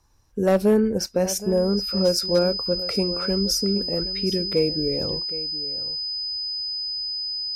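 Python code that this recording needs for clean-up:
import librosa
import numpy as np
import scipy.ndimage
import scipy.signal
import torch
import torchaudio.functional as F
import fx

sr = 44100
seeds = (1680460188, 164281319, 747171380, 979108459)

y = fx.fix_declip(x, sr, threshold_db=-11.5)
y = fx.notch(y, sr, hz=5000.0, q=30.0)
y = fx.fix_echo_inverse(y, sr, delay_ms=768, level_db=-15.5)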